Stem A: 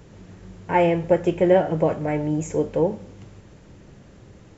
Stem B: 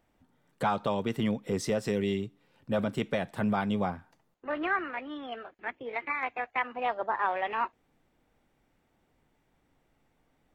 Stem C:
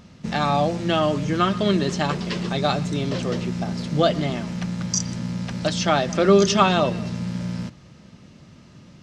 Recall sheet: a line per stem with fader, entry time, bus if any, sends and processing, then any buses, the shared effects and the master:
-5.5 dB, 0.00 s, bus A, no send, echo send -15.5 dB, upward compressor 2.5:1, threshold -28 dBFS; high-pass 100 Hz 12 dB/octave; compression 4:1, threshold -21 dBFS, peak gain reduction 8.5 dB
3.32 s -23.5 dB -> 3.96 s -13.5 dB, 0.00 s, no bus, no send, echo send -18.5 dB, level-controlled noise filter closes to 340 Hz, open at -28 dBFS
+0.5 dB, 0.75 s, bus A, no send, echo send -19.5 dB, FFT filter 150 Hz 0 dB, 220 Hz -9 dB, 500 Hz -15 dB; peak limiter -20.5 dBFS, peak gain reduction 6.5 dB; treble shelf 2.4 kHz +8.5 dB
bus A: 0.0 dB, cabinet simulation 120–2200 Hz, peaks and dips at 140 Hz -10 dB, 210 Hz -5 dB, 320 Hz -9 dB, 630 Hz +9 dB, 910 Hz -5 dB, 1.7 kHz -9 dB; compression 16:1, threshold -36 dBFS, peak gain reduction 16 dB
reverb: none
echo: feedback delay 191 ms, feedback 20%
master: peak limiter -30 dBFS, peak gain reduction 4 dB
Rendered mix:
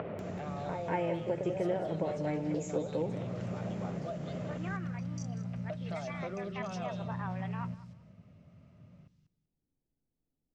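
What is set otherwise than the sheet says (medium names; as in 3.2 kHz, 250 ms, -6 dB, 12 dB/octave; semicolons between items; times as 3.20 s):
stem A -5.5 dB -> +6.0 dB; stem C: entry 0.75 s -> 0.05 s; master: missing peak limiter -30 dBFS, peak gain reduction 4 dB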